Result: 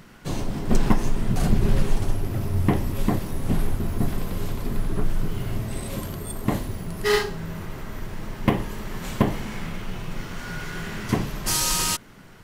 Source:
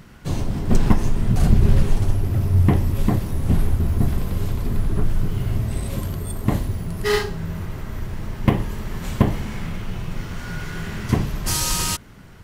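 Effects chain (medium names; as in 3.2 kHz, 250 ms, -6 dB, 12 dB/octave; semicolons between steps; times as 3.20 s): peaking EQ 63 Hz -11 dB 2 oct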